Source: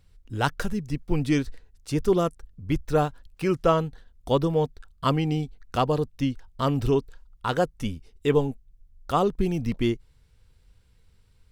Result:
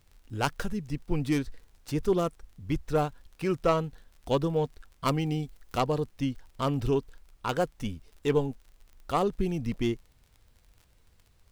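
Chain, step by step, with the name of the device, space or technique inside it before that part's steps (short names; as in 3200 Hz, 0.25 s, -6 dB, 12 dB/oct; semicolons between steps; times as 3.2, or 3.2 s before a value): record under a worn stylus (tracing distortion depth 0.13 ms; crackle 44/s -41 dBFS; pink noise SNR 41 dB); 5.07–5.8 high shelf 8600 Hz +5.5 dB; gain -4 dB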